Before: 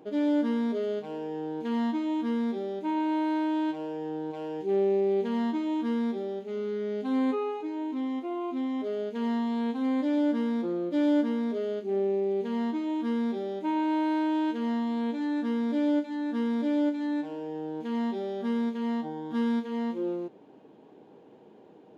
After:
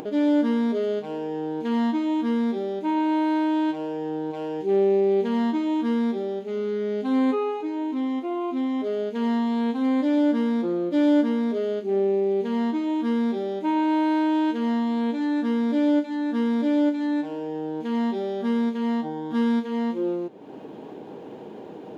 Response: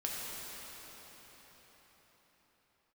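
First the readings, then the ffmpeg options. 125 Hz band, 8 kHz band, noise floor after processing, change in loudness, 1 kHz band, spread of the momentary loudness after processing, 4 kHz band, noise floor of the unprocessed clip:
+5.0 dB, no reading, -39 dBFS, +5.0 dB, +5.0 dB, 9 LU, +5.0 dB, -53 dBFS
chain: -af "acompressor=mode=upward:threshold=0.02:ratio=2.5,volume=1.78"

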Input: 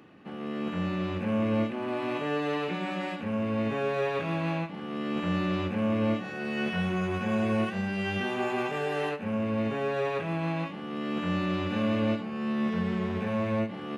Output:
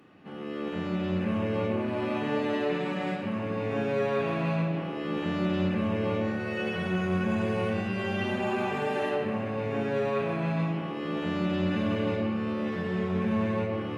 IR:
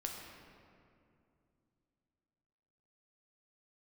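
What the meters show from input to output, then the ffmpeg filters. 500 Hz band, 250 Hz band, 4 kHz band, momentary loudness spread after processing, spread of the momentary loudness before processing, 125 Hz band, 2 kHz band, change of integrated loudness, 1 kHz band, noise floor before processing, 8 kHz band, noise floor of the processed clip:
+1.5 dB, 0.0 dB, -1.0 dB, 4 LU, 6 LU, +1.5 dB, 0.0 dB, +0.5 dB, 0.0 dB, -38 dBFS, no reading, -34 dBFS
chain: -filter_complex "[1:a]atrim=start_sample=2205,asetrate=41013,aresample=44100[s0];[0:a][s0]afir=irnorm=-1:irlink=0"

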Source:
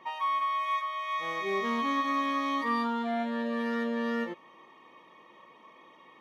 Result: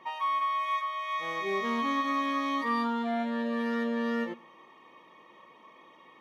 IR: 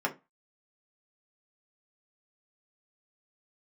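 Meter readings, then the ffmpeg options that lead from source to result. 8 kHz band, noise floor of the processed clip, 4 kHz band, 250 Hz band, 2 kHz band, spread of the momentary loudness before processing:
no reading, -56 dBFS, 0.0 dB, +1.0 dB, 0.0 dB, 4 LU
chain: -filter_complex "[0:a]asplit=2[s0][s1];[1:a]atrim=start_sample=2205,adelay=104[s2];[s1][s2]afir=irnorm=-1:irlink=0,volume=0.0398[s3];[s0][s3]amix=inputs=2:normalize=0"

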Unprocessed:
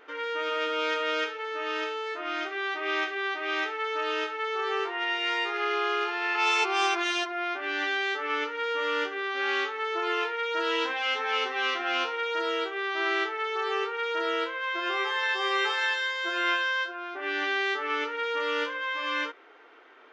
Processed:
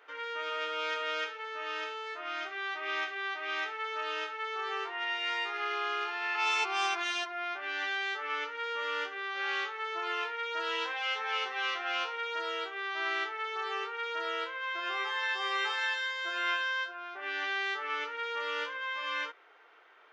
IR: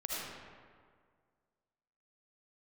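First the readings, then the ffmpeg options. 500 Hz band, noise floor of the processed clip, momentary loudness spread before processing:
-9.5 dB, -44 dBFS, 5 LU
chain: -af "highpass=550,volume=0.596"

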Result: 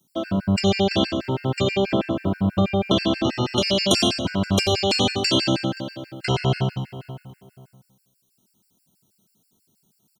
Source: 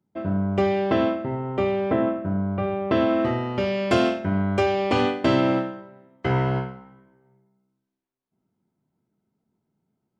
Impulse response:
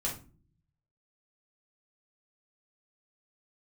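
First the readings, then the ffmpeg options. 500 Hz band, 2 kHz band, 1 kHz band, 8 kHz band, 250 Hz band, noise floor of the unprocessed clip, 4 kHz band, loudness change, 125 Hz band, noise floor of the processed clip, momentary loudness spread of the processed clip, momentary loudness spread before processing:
-1.0 dB, +1.5 dB, -1.5 dB, no reading, +1.0 dB, -80 dBFS, +13.0 dB, +1.5 dB, +3.0 dB, -68 dBFS, 11 LU, 7 LU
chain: -filter_complex "[0:a]acrossover=split=270|560[s0][s1][s2];[s0]acompressor=threshold=0.0398:ratio=4[s3];[s1]acompressor=threshold=0.0224:ratio=4[s4];[s2]acompressor=threshold=0.0224:ratio=4[s5];[s3][s4][s5]amix=inputs=3:normalize=0,asplit=2[s6][s7];[s7]adelay=524,lowpass=f=2300:p=1,volume=0.178,asplit=2[s8][s9];[s9]adelay=524,lowpass=f=2300:p=1,volume=0.22[s10];[s6][s8][s10]amix=inputs=3:normalize=0,aexciter=amount=6.9:drive=7.9:freq=2900,asplit=2[s11][s12];[1:a]atrim=start_sample=2205,adelay=87[s13];[s12][s13]afir=irnorm=-1:irlink=0,volume=0.237[s14];[s11][s14]amix=inputs=2:normalize=0,afftfilt=real='re*gt(sin(2*PI*6.2*pts/sr)*(1-2*mod(floor(b*sr/1024/1400),2)),0)':imag='im*gt(sin(2*PI*6.2*pts/sr)*(1-2*mod(floor(b*sr/1024/1400),2)),0)':win_size=1024:overlap=0.75,volume=2.11"

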